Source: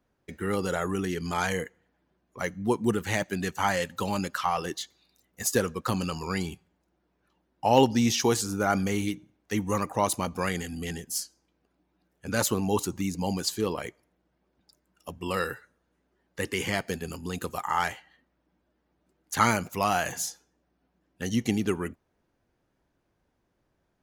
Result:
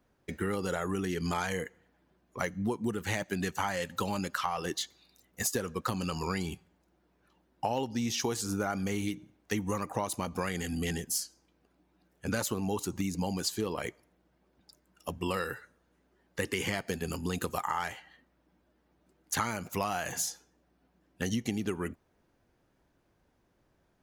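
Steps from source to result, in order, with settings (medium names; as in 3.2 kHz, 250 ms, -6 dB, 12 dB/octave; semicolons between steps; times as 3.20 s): compression 12:1, threshold -31 dBFS, peak gain reduction 17.5 dB; trim +3 dB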